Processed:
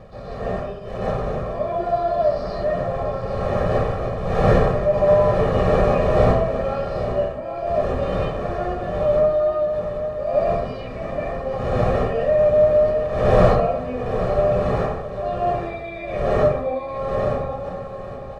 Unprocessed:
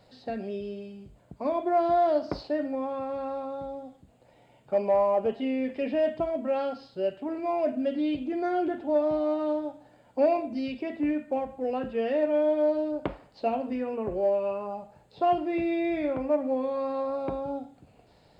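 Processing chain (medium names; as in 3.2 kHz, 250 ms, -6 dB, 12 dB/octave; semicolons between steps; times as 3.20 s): wind noise 500 Hz -26 dBFS; comb 1.7 ms, depth 84%; de-hum 79.82 Hz, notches 40; transient shaper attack -3 dB, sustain +4 dB; on a send: delay 808 ms -9.5 dB; on the sum: plate-style reverb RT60 0.55 s, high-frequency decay 0.5×, pre-delay 115 ms, DRR -9 dB; trim -8.5 dB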